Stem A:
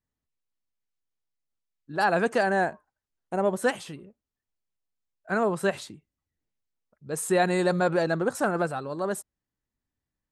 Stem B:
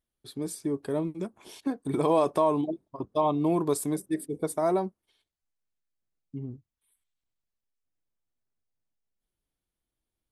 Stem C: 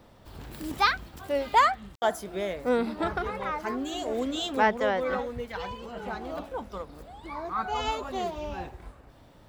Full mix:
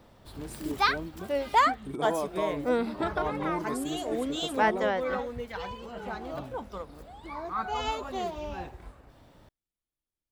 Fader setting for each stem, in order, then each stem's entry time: mute, -8.0 dB, -1.5 dB; mute, 0.00 s, 0.00 s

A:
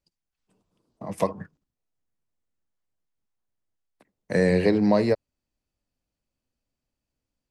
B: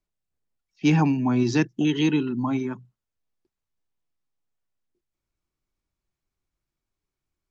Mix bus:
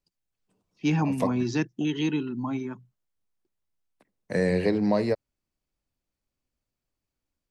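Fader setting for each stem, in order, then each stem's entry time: -3.5 dB, -5.0 dB; 0.00 s, 0.00 s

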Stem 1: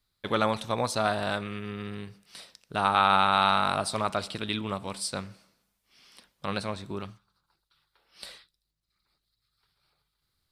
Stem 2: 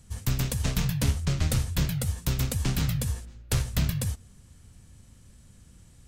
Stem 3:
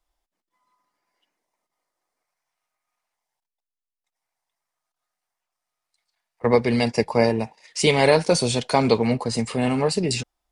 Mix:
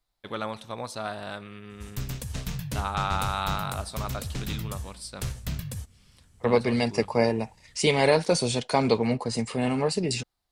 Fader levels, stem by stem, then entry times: -7.0 dB, -6.5 dB, -4.0 dB; 0.00 s, 1.70 s, 0.00 s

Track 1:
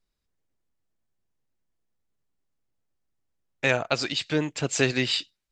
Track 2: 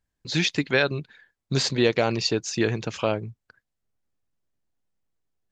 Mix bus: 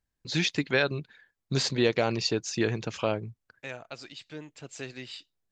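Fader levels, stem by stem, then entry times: -16.5 dB, -3.5 dB; 0.00 s, 0.00 s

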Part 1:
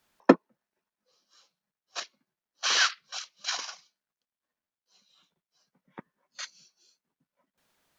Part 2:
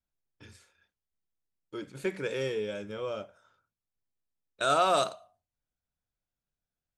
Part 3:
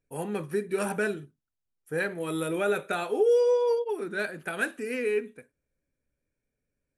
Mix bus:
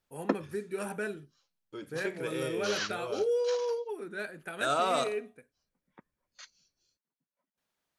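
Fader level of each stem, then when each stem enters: -11.5 dB, -3.5 dB, -7.0 dB; 0.00 s, 0.00 s, 0.00 s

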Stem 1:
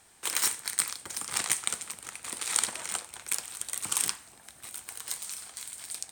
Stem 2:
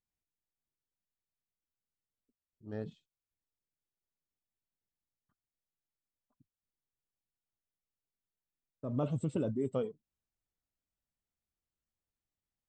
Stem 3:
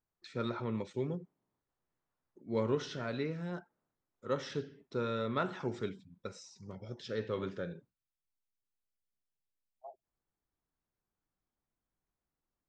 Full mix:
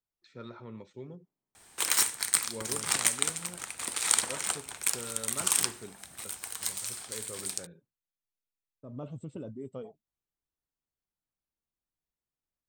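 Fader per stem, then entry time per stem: +2.0 dB, -7.5 dB, -8.5 dB; 1.55 s, 0.00 s, 0.00 s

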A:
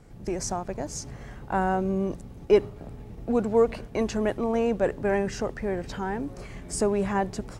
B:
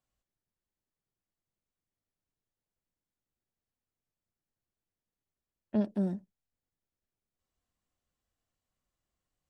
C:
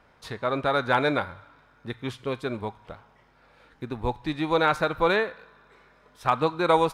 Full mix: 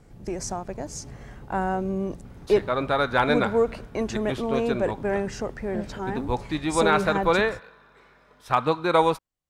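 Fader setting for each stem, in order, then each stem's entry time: -1.0 dB, -3.5 dB, +1.0 dB; 0.00 s, 0.00 s, 2.25 s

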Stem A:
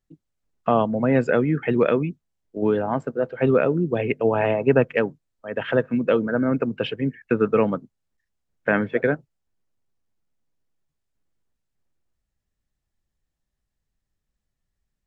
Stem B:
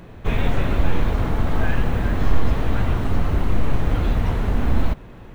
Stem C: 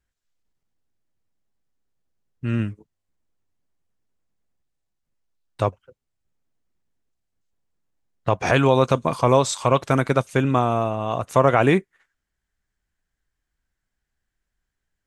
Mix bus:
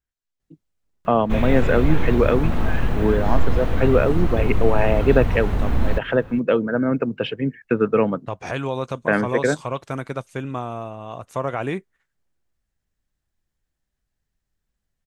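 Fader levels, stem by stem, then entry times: +1.0 dB, -1.0 dB, -9.0 dB; 0.40 s, 1.05 s, 0.00 s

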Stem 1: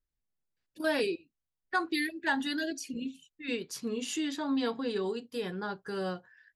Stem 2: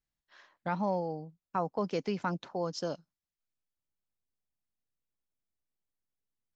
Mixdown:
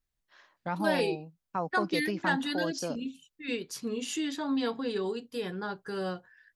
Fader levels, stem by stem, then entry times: +0.5 dB, -0.5 dB; 0.00 s, 0.00 s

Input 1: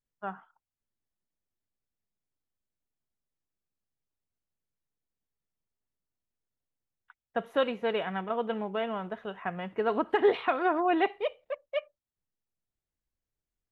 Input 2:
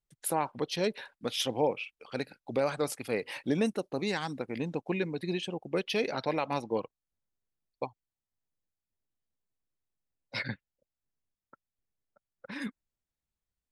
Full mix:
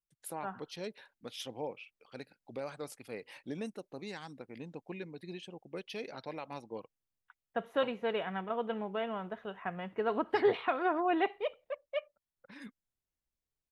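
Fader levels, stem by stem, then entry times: -4.0 dB, -11.5 dB; 0.20 s, 0.00 s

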